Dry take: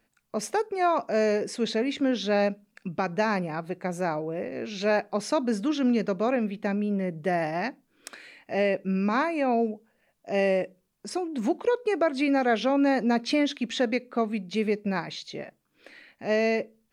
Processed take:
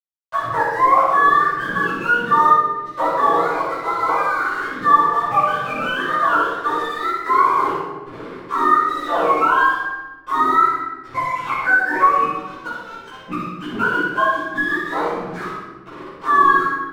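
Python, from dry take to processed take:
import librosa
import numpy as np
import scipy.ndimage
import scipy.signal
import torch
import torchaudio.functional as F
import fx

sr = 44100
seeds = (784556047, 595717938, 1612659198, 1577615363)

p1 = fx.octave_mirror(x, sr, pivot_hz=860.0)
p2 = scipy.signal.sosfilt(scipy.signal.butter(2, 370.0, 'highpass', fs=sr, output='sos'), p1)
p3 = fx.quant_dither(p2, sr, seeds[0], bits=8, dither='none')
p4 = fx.gate_flip(p3, sr, shuts_db=-21.0, range_db=-24, at=(12.09, 13.65))
p5 = np.clip(p4, -10.0 ** (-23.0 / 20.0), 10.0 ** (-23.0 / 20.0))
p6 = p4 + (p5 * librosa.db_to_amplitude(-3.5))
p7 = fx.lowpass_res(p6, sr, hz=1300.0, q=1.9)
p8 = np.sign(p7) * np.maximum(np.abs(p7) - 10.0 ** (-44.5 / 20.0), 0.0)
p9 = p8 + fx.room_flutter(p8, sr, wall_m=10.5, rt60_s=0.51, dry=0)
p10 = fx.room_shoebox(p9, sr, seeds[1], volume_m3=340.0, walls='mixed', distance_m=5.2)
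p11 = fx.band_squash(p10, sr, depth_pct=40)
y = p11 * librosa.db_to_amplitude(-7.5)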